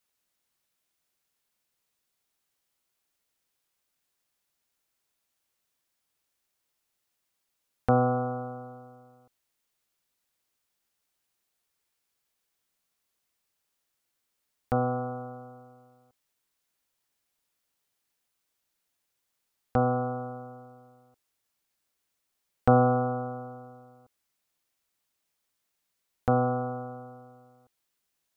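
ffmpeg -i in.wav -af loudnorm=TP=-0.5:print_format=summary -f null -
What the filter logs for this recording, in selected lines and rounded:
Input Integrated:    -28.3 LUFS
Input True Peak:      -6.3 dBTP
Input LRA:             7.2 LU
Input Threshold:     -41.0 LUFS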